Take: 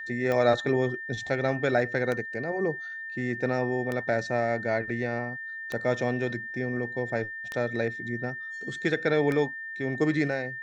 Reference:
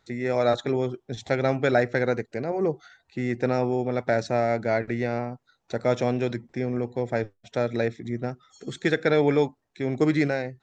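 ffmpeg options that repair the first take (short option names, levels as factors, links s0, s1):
-af "adeclick=t=4,bandreject=f=1800:w=30,asetnsamples=n=441:p=0,asendcmd='1.27 volume volume 3.5dB',volume=1"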